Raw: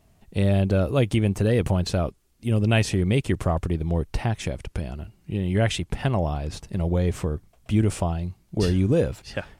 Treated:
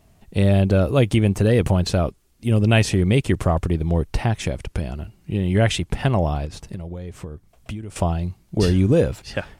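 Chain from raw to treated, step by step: 6.45–7.96 s: compression 10:1, threshold -33 dBFS, peak gain reduction 18 dB; trim +4 dB

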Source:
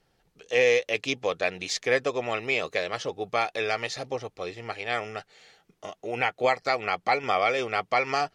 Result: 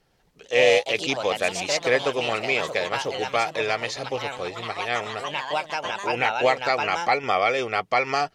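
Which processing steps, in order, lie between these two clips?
ever faster or slower copies 116 ms, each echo +3 st, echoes 3, each echo -6 dB; trim +2.5 dB

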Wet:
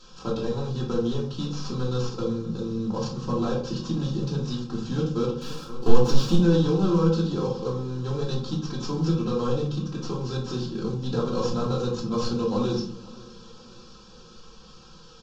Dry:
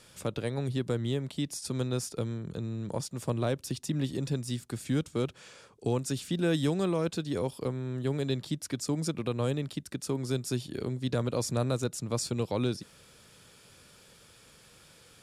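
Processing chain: CVSD coder 32 kbps; on a send: feedback delay 521 ms, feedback 54%, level -22.5 dB; 5.41–6.38 s: on the sum: waveshaping leveller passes 2; simulated room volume 450 m³, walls furnished, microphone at 2.9 m; in parallel at -5.5 dB: saturation -21.5 dBFS, distortion -11 dB; on the sum: bass shelf 130 Hz +8 dB; static phaser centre 410 Hz, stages 8; comb 3.8 ms, depth 66%; trim -1 dB

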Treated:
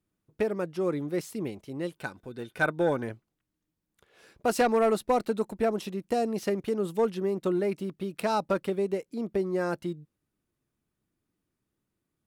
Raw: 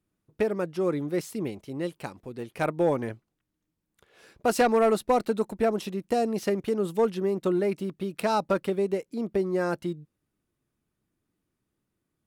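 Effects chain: 1.97–3.02 s: small resonant body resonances 1.5/3.6 kHz, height 15 dB -> 18 dB; trim -2 dB

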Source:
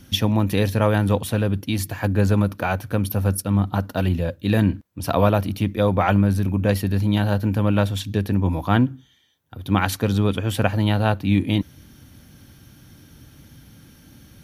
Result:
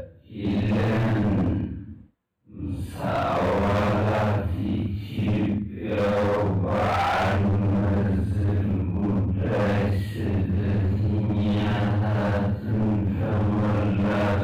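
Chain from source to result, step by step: boxcar filter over 8 samples; Paulstretch 4.1×, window 0.10 s, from 4.33 s; overload inside the chain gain 20 dB

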